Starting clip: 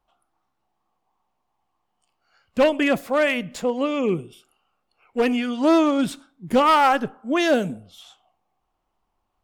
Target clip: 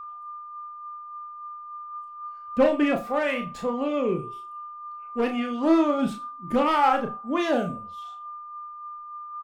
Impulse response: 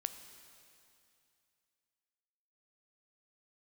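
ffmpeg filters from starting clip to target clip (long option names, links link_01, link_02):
-filter_complex "[0:a]highshelf=frequency=2300:gain=-9.5,aeval=exprs='val(0)+0.0141*sin(2*PI*1200*n/s)':channel_layout=same,flanger=delay=0.8:depth=5.3:regen=49:speed=0.27:shape=triangular,asplit=2[link_01][link_02];[link_02]asoftclip=type=tanh:threshold=-22.5dB,volume=-7dB[link_03];[link_01][link_03]amix=inputs=2:normalize=0,asplit=2[link_04][link_05];[link_05]adelay=34,volume=-5.5dB[link_06];[link_04][link_06]amix=inputs=2:normalize=0[link_07];[1:a]atrim=start_sample=2205,atrim=end_sample=3969[link_08];[link_07][link_08]afir=irnorm=-1:irlink=0"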